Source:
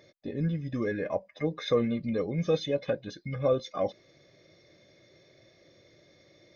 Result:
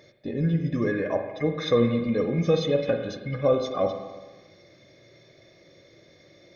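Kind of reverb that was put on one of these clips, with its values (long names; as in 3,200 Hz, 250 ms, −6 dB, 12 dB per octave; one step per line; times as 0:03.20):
spring reverb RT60 1.3 s, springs 42/51 ms, chirp 70 ms, DRR 5 dB
level +4 dB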